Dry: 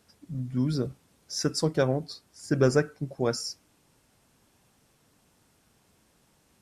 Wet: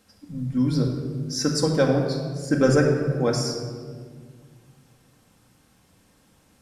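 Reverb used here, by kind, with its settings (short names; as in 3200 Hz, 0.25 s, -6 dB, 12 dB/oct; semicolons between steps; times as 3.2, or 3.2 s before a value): shoebox room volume 2300 m³, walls mixed, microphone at 2.1 m; gain +2 dB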